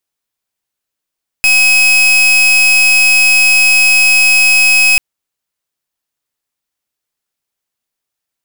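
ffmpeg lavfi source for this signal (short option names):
-f lavfi -i "aevalsrc='0.398*(2*lt(mod(2550*t,1),0.39)-1)':d=3.54:s=44100"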